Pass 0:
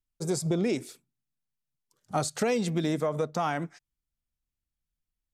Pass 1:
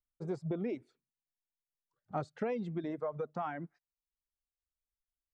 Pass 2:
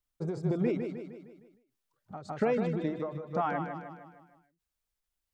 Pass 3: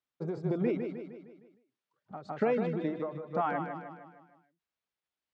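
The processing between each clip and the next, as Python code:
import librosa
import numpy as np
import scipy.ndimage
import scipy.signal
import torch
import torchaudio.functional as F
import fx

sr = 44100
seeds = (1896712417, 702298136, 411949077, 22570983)

y1 = scipy.signal.sosfilt(scipy.signal.butter(2, 1800.0, 'lowpass', fs=sr, output='sos'), x)
y1 = fx.dereverb_blind(y1, sr, rt60_s=1.4)
y1 = y1 * 10.0 ** (-7.5 / 20.0)
y2 = fx.echo_feedback(y1, sr, ms=154, feedback_pct=51, wet_db=-7.0)
y2 = fx.end_taper(y2, sr, db_per_s=110.0)
y2 = y2 * 10.0 ** (7.0 / 20.0)
y3 = fx.bandpass_edges(y2, sr, low_hz=160.0, high_hz=3800.0)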